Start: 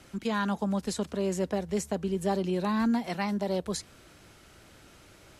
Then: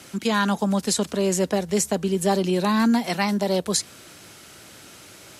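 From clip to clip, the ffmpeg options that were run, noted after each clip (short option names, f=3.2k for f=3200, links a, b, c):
-af "highpass=110,highshelf=f=3.4k:g=8.5,volume=7dB"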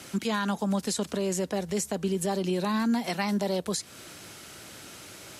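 -af "alimiter=limit=-19dB:level=0:latency=1:release=237"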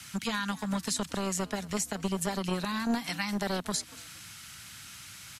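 -filter_complex "[0:a]acrossover=split=200|1000|4200[a][b][c][d];[b]acrusher=bits=3:mix=0:aa=0.5[e];[a][e][c][d]amix=inputs=4:normalize=0,asplit=3[f][g][h];[g]adelay=233,afreqshift=57,volume=-21dB[i];[h]adelay=466,afreqshift=114,volume=-30.6dB[j];[f][i][j]amix=inputs=3:normalize=0"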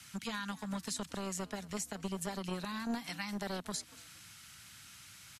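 -af "aresample=32000,aresample=44100,volume=-7.5dB"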